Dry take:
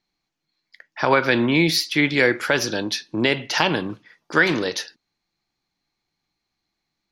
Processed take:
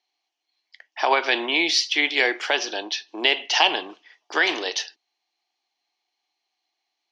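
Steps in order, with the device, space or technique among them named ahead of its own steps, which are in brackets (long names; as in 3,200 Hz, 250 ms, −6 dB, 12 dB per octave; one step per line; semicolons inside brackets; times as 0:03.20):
0:02.55–0:03.08: high-frequency loss of the air 100 metres
phone speaker on a table (loudspeaker in its box 390–7,000 Hz, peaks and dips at 520 Hz −8 dB, 740 Hz +8 dB, 1,400 Hz −7 dB, 3,000 Hz +9 dB, 5,800 Hz +4 dB)
level −1 dB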